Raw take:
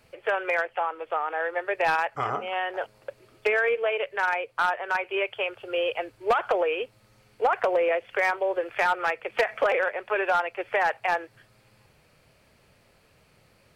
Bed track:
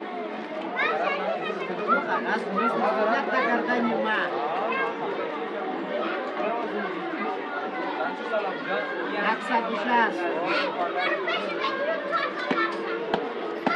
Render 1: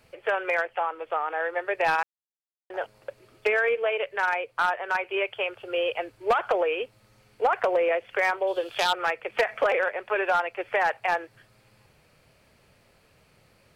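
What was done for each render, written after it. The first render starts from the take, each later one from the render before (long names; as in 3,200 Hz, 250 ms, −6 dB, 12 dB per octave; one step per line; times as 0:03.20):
0:02.03–0:02.70: silence
0:08.47–0:08.93: high shelf with overshoot 2,700 Hz +9 dB, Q 3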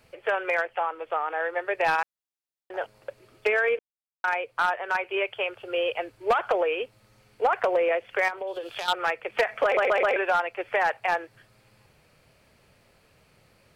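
0:03.79–0:04.24: silence
0:08.28–0:08.88: downward compressor 4 to 1, threshold −30 dBFS
0:09.64: stutter in place 0.13 s, 4 plays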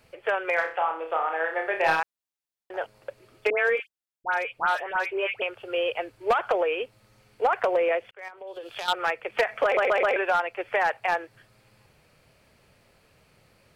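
0:00.54–0:02.00: flutter between parallel walls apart 5.3 metres, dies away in 0.37 s
0:03.50–0:05.42: all-pass dispersion highs, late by 98 ms, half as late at 1,500 Hz
0:08.11–0:08.91: fade in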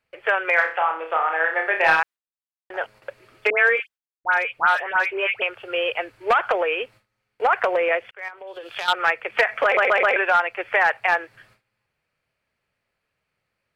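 noise gate with hold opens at −48 dBFS
parametric band 1,800 Hz +8.5 dB 1.9 octaves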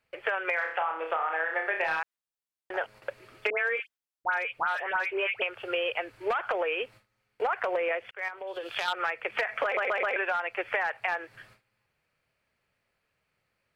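brickwall limiter −11 dBFS, peak gain reduction 6.5 dB
downward compressor 4 to 1, threshold −27 dBFS, peak gain reduction 9.5 dB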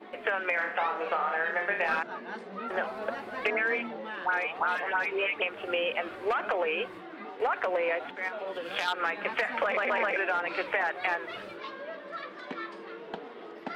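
mix in bed track −13.5 dB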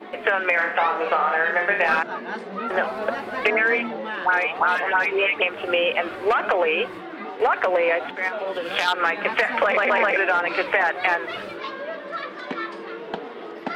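level +8.5 dB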